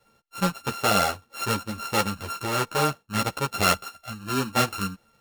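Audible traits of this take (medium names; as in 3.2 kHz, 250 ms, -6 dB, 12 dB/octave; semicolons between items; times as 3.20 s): a buzz of ramps at a fixed pitch in blocks of 32 samples; a shimmering, thickened sound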